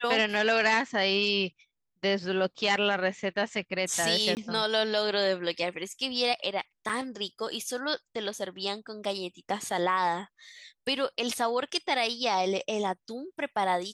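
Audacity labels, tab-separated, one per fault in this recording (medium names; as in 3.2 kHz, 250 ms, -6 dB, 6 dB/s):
4.350000	4.370000	dropout 19 ms
6.890000	6.890000	dropout 4.1 ms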